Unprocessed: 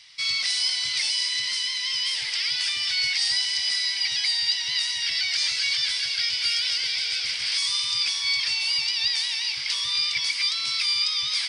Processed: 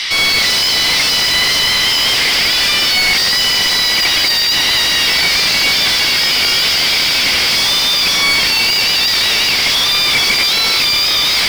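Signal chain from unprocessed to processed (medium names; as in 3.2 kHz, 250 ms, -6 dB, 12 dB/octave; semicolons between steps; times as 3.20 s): de-hum 292.6 Hz, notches 39; reverse echo 74 ms -6 dB; overdrive pedal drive 35 dB, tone 2.8 kHz, clips at -10 dBFS; trim +7 dB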